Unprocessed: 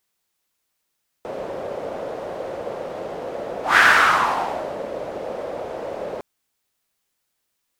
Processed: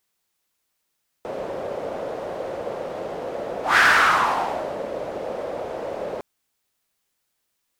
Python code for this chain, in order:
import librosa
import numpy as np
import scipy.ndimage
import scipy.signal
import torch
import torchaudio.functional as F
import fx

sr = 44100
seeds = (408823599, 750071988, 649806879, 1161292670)

y = 10.0 ** (-8.5 / 20.0) * np.tanh(x / 10.0 ** (-8.5 / 20.0))